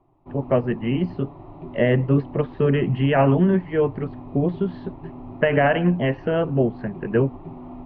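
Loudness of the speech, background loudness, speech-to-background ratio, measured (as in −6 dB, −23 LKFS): −22.0 LKFS, −39.0 LKFS, 17.0 dB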